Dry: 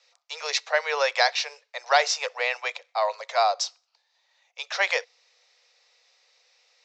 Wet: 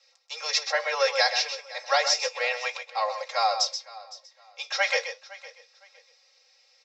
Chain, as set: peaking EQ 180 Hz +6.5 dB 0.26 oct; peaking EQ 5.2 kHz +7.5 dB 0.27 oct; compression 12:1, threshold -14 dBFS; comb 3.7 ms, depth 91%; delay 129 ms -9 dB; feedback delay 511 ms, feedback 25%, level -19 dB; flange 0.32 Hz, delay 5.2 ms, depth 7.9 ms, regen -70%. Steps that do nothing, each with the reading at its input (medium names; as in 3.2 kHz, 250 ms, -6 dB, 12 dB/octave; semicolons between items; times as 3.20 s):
peaking EQ 180 Hz: input has nothing below 380 Hz